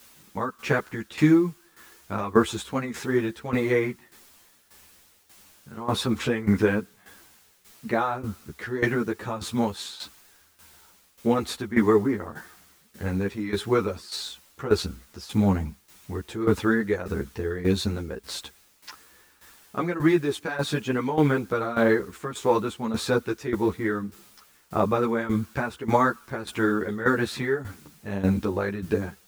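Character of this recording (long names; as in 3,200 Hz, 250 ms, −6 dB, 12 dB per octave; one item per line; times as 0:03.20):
a quantiser's noise floor 10 bits, dither triangular
tremolo saw down 1.7 Hz, depth 80%
a shimmering, thickened sound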